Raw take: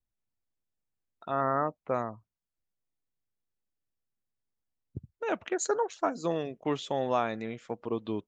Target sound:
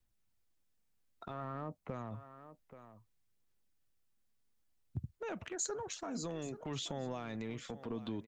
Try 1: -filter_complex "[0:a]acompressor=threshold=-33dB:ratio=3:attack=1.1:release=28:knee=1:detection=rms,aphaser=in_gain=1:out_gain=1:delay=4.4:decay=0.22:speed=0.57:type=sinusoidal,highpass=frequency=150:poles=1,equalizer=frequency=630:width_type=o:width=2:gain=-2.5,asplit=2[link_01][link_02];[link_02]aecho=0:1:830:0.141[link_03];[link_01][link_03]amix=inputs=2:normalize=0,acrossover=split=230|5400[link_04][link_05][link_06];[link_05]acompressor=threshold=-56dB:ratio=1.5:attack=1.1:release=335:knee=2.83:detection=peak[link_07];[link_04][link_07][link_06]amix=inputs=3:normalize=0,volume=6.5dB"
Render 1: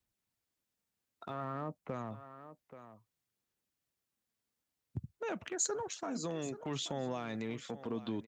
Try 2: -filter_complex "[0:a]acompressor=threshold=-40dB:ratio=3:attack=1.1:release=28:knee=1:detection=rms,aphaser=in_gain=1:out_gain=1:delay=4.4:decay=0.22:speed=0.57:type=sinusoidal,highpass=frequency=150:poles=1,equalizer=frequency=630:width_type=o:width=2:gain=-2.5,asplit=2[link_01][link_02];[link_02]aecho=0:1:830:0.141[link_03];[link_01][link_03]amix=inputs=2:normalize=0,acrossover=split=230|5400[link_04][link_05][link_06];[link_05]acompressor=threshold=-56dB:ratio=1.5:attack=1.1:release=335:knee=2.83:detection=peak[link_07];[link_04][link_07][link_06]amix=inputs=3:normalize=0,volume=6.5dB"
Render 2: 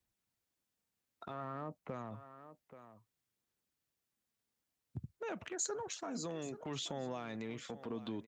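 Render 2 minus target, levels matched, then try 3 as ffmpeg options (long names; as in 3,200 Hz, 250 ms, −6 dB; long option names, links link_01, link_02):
125 Hz band −3.0 dB
-filter_complex "[0:a]acompressor=threshold=-40dB:ratio=3:attack=1.1:release=28:knee=1:detection=rms,aphaser=in_gain=1:out_gain=1:delay=4.4:decay=0.22:speed=0.57:type=sinusoidal,equalizer=frequency=630:width_type=o:width=2:gain=-2.5,asplit=2[link_01][link_02];[link_02]aecho=0:1:830:0.141[link_03];[link_01][link_03]amix=inputs=2:normalize=0,acrossover=split=230|5400[link_04][link_05][link_06];[link_05]acompressor=threshold=-56dB:ratio=1.5:attack=1.1:release=335:knee=2.83:detection=peak[link_07];[link_04][link_07][link_06]amix=inputs=3:normalize=0,volume=6.5dB"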